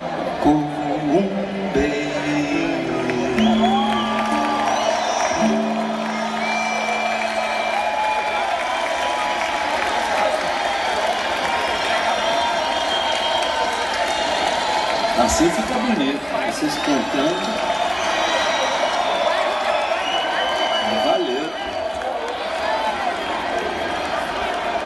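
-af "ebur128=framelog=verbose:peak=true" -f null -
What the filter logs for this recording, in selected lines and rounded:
Integrated loudness:
  I:         -20.1 LUFS
  Threshold: -30.1 LUFS
Loudness range:
  LRA:         1.8 LU
  Threshold: -40.0 LUFS
  LRA low:   -20.9 LUFS
  LRA high:  -19.1 LUFS
True peak:
  Peak:       -6.0 dBFS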